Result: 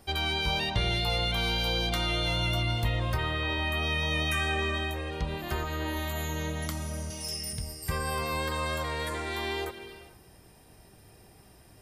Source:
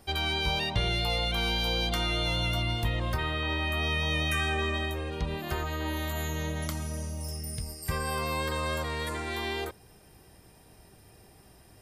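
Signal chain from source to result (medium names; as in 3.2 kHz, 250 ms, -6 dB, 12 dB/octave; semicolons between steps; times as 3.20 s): 7.10–7.53 s: frequency weighting D; on a send: reverberation, pre-delay 76 ms, DRR 11 dB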